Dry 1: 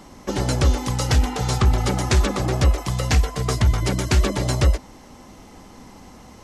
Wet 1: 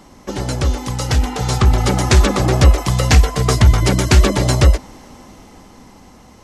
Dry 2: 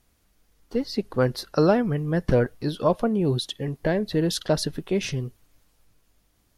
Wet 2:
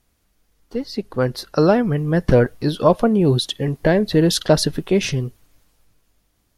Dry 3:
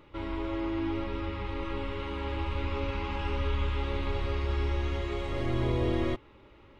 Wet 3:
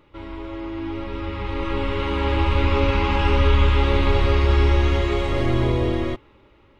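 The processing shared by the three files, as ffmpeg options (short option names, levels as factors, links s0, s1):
-af "dynaudnorm=f=250:g=13:m=4.73"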